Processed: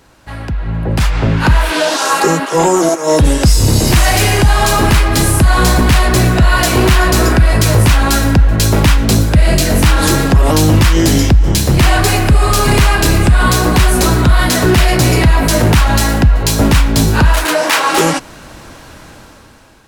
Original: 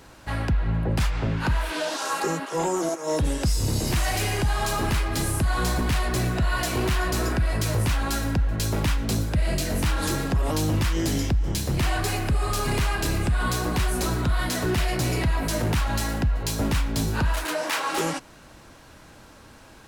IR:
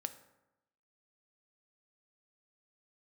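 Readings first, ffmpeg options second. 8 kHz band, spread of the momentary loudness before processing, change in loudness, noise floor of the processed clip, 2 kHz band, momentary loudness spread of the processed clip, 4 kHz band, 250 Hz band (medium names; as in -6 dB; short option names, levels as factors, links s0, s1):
+14.5 dB, 2 LU, +14.0 dB, -37 dBFS, +14.0 dB, 3 LU, +14.0 dB, +14.0 dB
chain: -af "dynaudnorm=f=390:g=5:m=5.96,volume=1.12"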